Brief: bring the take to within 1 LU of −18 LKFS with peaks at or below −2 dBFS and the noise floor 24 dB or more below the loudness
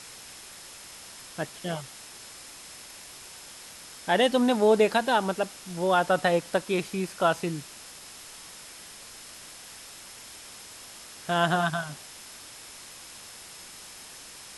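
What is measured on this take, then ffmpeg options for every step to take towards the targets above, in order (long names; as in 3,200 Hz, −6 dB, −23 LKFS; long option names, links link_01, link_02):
interfering tone 5,200 Hz; level of the tone −54 dBFS; background noise floor −46 dBFS; target noise floor −50 dBFS; integrated loudness −26.0 LKFS; sample peak −9.0 dBFS; target loudness −18.0 LKFS
→ -af "bandreject=frequency=5200:width=30"
-af "afftdn=noise_reduction=6:noise_floor=-46"
-af "volume=8dB,alimiter=limit=-2dB:level=0:latency=1"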